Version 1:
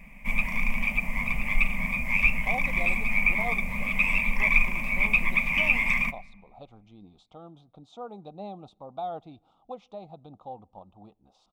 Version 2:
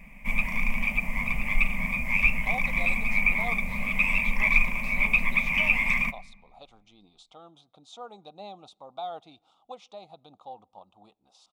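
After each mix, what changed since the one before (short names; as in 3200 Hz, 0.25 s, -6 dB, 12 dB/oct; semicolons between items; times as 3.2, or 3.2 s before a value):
speech: add tilt +4 dB/oct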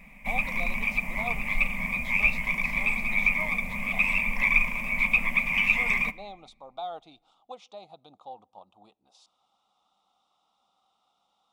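speech: entry -2.20 s; master: add low shelf 150 Hz -5.5 dB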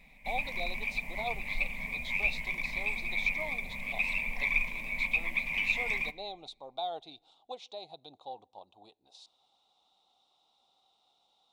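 background -7.0 dB; master: add thirty-one-band EQ 200 Hz -8 dB, 400 Hz +5 dB, 1250 Hz -12 dB, 4000 Hz +10 dB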